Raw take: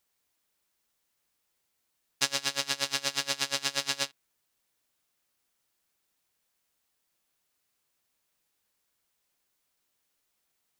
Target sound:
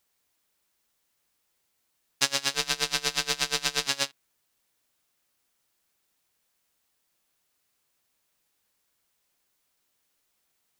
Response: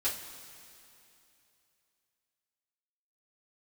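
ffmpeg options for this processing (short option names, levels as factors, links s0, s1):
-filter_complex "[0:a]asettb=1/sr,asplit=3[s0][s1][s2];[s0]atrim=end=2.544[s3];[s1]atrim=start=2.54:end=3.87,asetpts=PTS-STARTPTS,afade=t=in:d=0.004:c=qsin,afade=t=out:st=1.326:d=0.004:c=qsin,afreqshift=-110[s4];[s2]atrim=start=3.866[s5];[s3][s4]acrossfade=d=0.004:c1=hsin:c2=qsin[s6];[s6][s5]acrossfade=d=0.004:c1=qsin:c2=hsin,volume=1.41"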